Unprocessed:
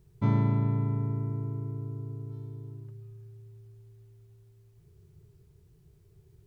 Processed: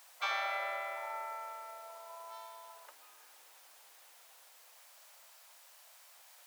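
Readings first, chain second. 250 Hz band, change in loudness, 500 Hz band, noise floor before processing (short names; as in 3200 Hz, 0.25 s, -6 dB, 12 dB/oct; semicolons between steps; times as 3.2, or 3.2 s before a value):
under -40 dB, -9.0 dB, -3.5 dB, -61 dBFS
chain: spectral gate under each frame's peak -30 dB weak; HPF 640 Hz 24 dB/oct; in parallel at -0.5 dB: compressor, threshold -56 dBFS, peak gain reduction 9 dB; on the sum: gain +13.5 dB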